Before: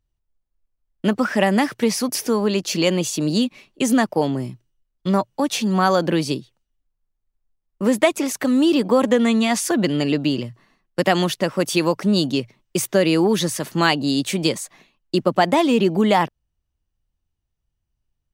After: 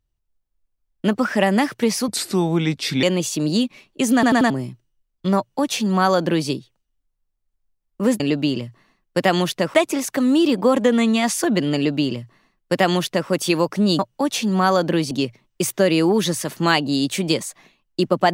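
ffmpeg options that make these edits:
-filter_complex "[0:a]asplit=11[a][b][c][d][e][f][g][h][i][j][k];[a]atrim=end=2.084[l];[b]atrim=start=2.08:end=2.84,asetpts=PTS-STARTPTS,asetrate=35280,aresample=44100[m];[c]atrim=start=2.836:end=4.042[n];[d]atrim=start=3.948:end=4.042[o];[e]atrim=start=3.948:end=4.042[p];[f]atrim=start=3.948:end=4.042[q];[g]atrim=start=4.308:end=8.012[r];[h]atrim=start=10.018:end=11.562[s];[i]atrim=start=8.008:end=12.262[t];[j]atrim=start=5.178:end=6.302[u];[k]atrim=start=12.258[v];[l][m]acrossfade=d=0.004:c1=hsin:c2=hsin[w];[w][n]acrossfade=d=0.004:c1=hsin:c2=hsin[x];[x][o]acrossfade=d=0.004:c1=hsin:c2=hsin[y];[y][p]acrossfade=d=0.004:c1=hsin:c2=hsin[z];[z][q]acrossfade=d=0.004:c1=hsin:c2=hsin[aa];[aa][r]acrossfade=d=0.004:c1=hsin:c2=hsin[ab];[ab][s]acrossfade=d=0.004:c1=hsin:c2=hsin[ac];[ac][t]acrossfade=d=0.004:c1=hsin:c2=hsin[ad];[ad][u]acrossfade=d=0.004:c1=hsin:c2=hsin[ae];[ae][v]acrossfade=d=0.004:c1=hsin:c2=hsin"

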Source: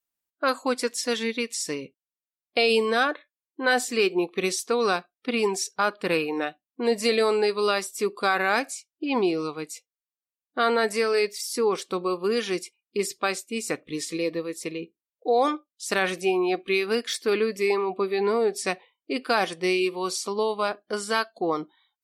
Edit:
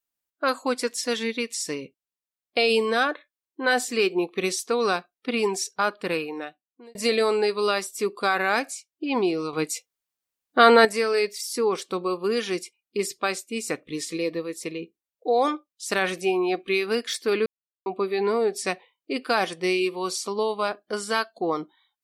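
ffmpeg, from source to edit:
-filter_complex "[0:a]asplit=6[a][b][c][d][e][f];[a]atrim=end=6.95,asetpts=PTS-STARTPTS,afade=t=out:st=5.86:d=1.09[g];[b]atrim=start=6.95:end=9.532,asetpts=PTS-STARTPTS,afade=t=in:d=0.004:c=hsin[h];[c]atrim=start=9.528:end=10.852,asetpts=PTS-STARTPTS,volume=8dB[i];[d]atrim=start=10.848:end=17.46,asetpts=PTS-STARTPTS,afade=t=out:st=6.608:d=0.004:c=hsin[j];[e]atrim=start=17.46:end=17.86,asetpts=PTS-STARTPTS,volume=0[k];[f]atrim=start=17.86,asetpts=PTS-STARTPTS,afade=t=in:d=0.004:c=hsin[l];[g][h]concat=n=2:v=0:a=1[m];[m][i]acrossfade=d=0.004:c1=hsin:c2=hsin[n];[j][k][l]concat=n=3:v=0:a=1[o];[n][o]acrossfade=d=0.004:c1=hsin:c2=hsin"

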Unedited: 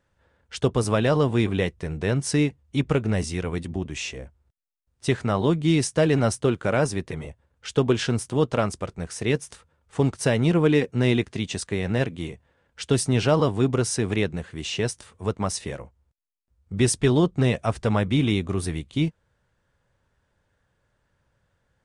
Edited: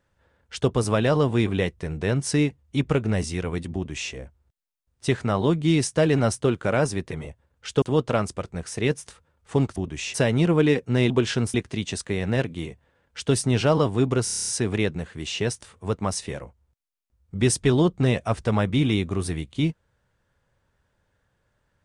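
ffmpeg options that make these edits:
-filter_complex "[0:a]asplit=14[a][b][c][d][e][f][g][h][i][j][k][l][m][n];[a]atrim=end=7.822[o];[b]atrim=start=8.258:end=10.202[p];[c]atrim=start=3.738:end=4.122[q];[d]atrim=start=10.198:end=11.162[r];[e]atrim=start=7.818:end=8.262[s];[f]atrim=start=11.158:end=13.892[t];[g]atrim=start=13.858:end=13.892[u];[h]atrim=start=13.858:end=13.892[v];[i]atrim=start=13.858:end=13.892[w];[j]atrim=start=13.858:end=13.892[x];[k]atrim=start=13.858:end=13.892[y];[l]atrim=start=13.858:end=13.892[z];[m]atrim=start=13.858:end=13.892[aa];[n]atrim=start=13.858[ab];[o][p]acrossfade=d=0.004:c1=hsin:c2=hsin[ac];[ac][q]acrossfade=d=0.004:c1=hsin:c2=hsin[ad];[ad][r]acrossfade=d=0.004:c1=hsin:c2=hsin[ae];[ae][s]acrossfade=d=0.004:c1=hsin:c2=hsin[af];[af][t]acrossfade=d=0.004:c1=hsin:c2=hsin[ag];[ag][u]acrossfade=d=0.004:c1=hsin:c2=hsin[ah];[ah][v]acrossfade=d=0.004:c1=hsin:c2=hsin[ai];[ai][w]acrossfade=d=0.004:c1=hsin:c2=hsin[aj];[aj][x]acrossfade=d=0.004:c1=hsin:c2=hsin[ak];[ak][y]acrossfade=d=0.004:c1=hsin:c2=hsin[al];[al][z]acrossfade=d=0.004:c1=hsin:c2=hsin[am];[am][aa]acrossfade=d=0.004:c1=hsin:c2=hsin[an];[an][ab]acrossfade=d=0.004:c1=hsin:c2=hsin"

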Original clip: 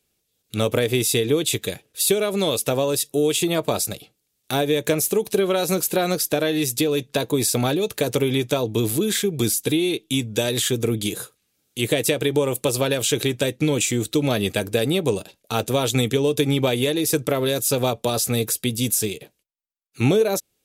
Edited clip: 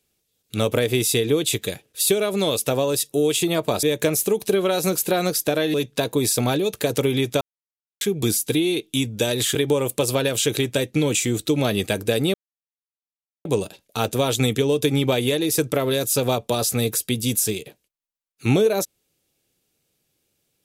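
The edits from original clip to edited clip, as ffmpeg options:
-filter_complex "[0:a]asplit=7[a][b][c][d][e][f][g];[a]atrim=end=3.832[h];[b]atrim=start=4.678:end=6.592[i];[c]atrim=start=6.908:end=8.58,asetpts=PTS-STARTPTS,afade=t=out:st=1.668:d=0.004:c=hsin[j];[d]atrim=start=8.58:end=9.18,asetpts=PTS-STARTPTS,volume=0[k];[e]atrim=start=9.18:end=10.722,asetpts=PTS-STARTPTS,afade=t=in:d=0.004:c=hsin[l];[f]atrim=start=12.208:end=15,asetpts=PTS-STARTPTS,afade=t=out:st=2.788:d=0.004:c=hsin,apad=pad_dur=1.11[m];[g]atrim=start=15,asetpts=PTS-STARTPTS,afade=t=in:d=0.004:c=hsin[n];[h][i]acrossfade=d=0.004:c1=hsin:c2=hsin[o];[j][k][l]concat=n=3:v=0:a=1[p];[o][p]acrossfade=d=0.004:c1=hsin:c2=hsin[q];[m][n]concat=n=2:v=0:a=1[r];[q][r]acrossfade=d=0.004:c1=hsin:c2=hsin"

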